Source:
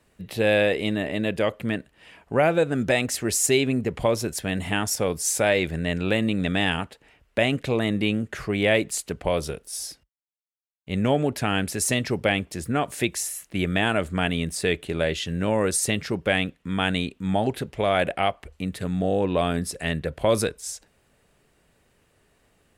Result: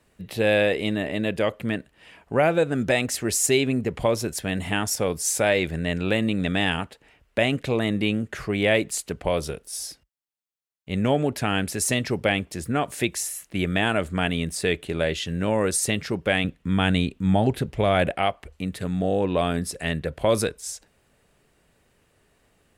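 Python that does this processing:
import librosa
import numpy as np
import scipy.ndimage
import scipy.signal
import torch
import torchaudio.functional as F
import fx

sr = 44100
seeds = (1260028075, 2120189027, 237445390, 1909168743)

y = fx.low_shelf(x, sr, hz=200.0, db=9.0, at=(16.44, 18.11))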